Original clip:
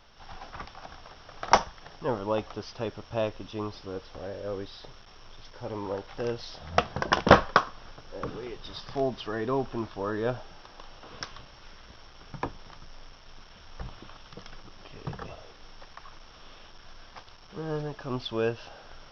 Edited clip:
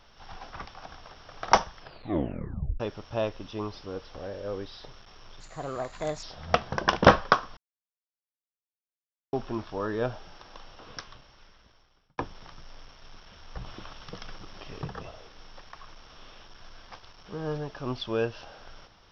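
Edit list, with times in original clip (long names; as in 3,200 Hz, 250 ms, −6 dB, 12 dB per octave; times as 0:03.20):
0:01.79: tape stop 1.01 s
0:05.40–0:06.47: play speed 129%
0:07.81–0:09.57: silence
0:10.82–0:12.42: fade out
0:13.90–0:15.06: clip gain +3.5 dB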